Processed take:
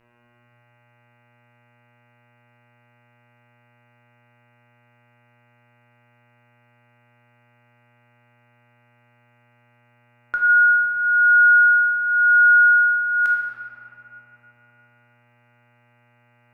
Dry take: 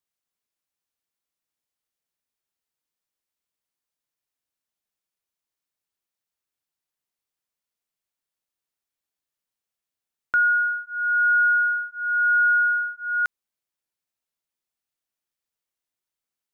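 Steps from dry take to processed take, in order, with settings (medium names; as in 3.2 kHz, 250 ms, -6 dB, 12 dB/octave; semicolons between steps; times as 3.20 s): mains buzz 120 Hz, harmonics 24, -62 dBFS -3 dB/octave; simulated room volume 140 m³, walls hard, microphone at 0.54 m; trim -1.5 dB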